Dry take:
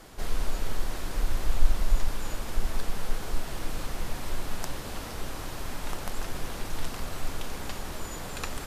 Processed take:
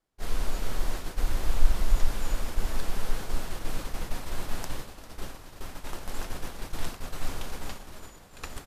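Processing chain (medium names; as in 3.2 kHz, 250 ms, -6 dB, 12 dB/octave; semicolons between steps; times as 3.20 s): on a send: feedback delay 397 ms, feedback 29%, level -10 dB; on the sum: expander -25 dBFS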